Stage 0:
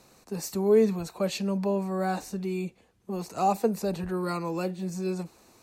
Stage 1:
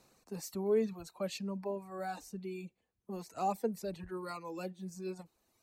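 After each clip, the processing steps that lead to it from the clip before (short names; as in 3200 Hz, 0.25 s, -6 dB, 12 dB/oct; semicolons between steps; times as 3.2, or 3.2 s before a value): reverb removal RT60 1.7 s; gain -8.5 dB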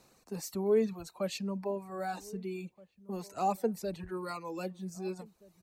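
outdoor echo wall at 270 m, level -22 dB; gain +3 dB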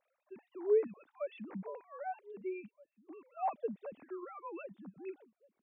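sine-wave speech; gain -4.5 dB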